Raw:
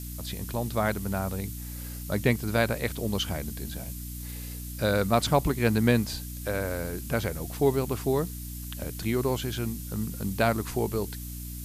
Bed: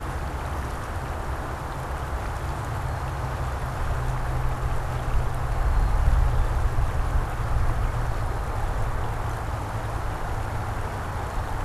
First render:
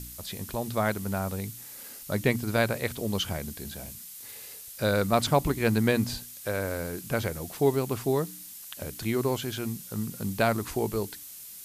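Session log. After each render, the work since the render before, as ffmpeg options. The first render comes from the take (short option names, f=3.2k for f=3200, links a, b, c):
-af "bandreject=f=60:t=h:w=4,bandreject=f=120:t=h:w=4,bandreject=f=180:t=h:w=4,bandreject=f=240:t=h:w=4,bandreject=f=300:t=h:w=4"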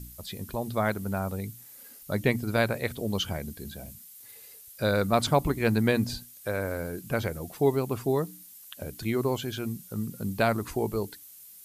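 -af "afftdn=nr=9:nf=-44"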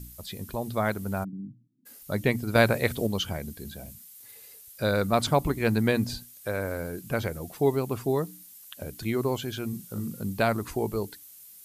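-filter_complex "[0:a]asplit=3[a][b][c];[a]afade=t=out:st=1.23:d=0.02[d];[b]asuperpass=centerf=200:order=12:qfactor=1,afade=t=in:st=1.23:d=0.02,afade=t=out:st=1.85:d=0.02[e];[c]afade=t=in:st=1.85:d=0.02[f];[d][e][f]amix=inputs=3:normalize=0,asettb=1/sr,asplit=3[g][h][i];[g]atrim=end=2.554[j];[h]atrim=start=2.55:end=3.07,asetpts=PTS-STARTPTS,afade=t=in:d=0.004:c=qsin,afade=t=out:st=0.516:d=0.004:c=qsin,acontrast=25[k];[i]atrim=start=3.066[l];[j][k]acrossfade=d=0.004:c1=hsin:c2=qsin[m];[m][l]acrossfade=d=0.004:c1=qsin:c2=hsin,asettb=1/sr,asplit=3[n][o][p];[n]atrim=end=9.694[q];[o]atrim=start=9.69:end=10.21,asetpts=PTS-STARTPTS,afade=t=in:d=0.004:c=qsin,afade=t=out:st=0.516:d=0.004:c=qsin,asplit=2[r][s];[s]adelay=40,volume=-5.5dB[t];[r][t]amix=inputs=2:normalize=0,atrim=end_sample=22932[u];[p]atrim=start=10.206[v];[q][u]acrossfade=d=0.004:c1=hsin:c2=qsin[w];[w][v]acrossfade=d=0.004:c1=qsin:c2=hsin"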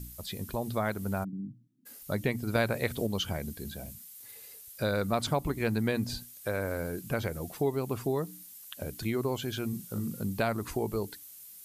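-af "acompressor=threshold=-29dB:ratio=2"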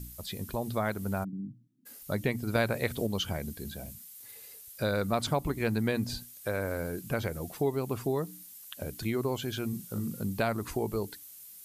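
-af anull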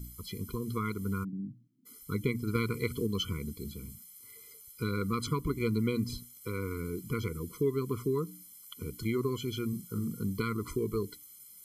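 -af "afftfilt=real='re*eq(mod(floor(b*sr/1024/490),2),0)':imag='im*eq(mod(floor(b*sr/1024/490),2),0)':win_size=1024:overlap=0.75"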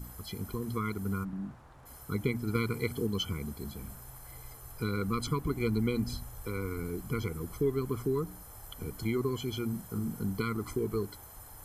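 -filter_complex "[1:a]volume=-24dB[a];[0:a][a]amix=inputs=2:normalize=0"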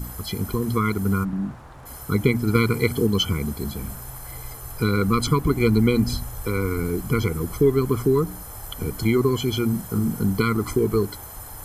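-af "volume=11.5dB"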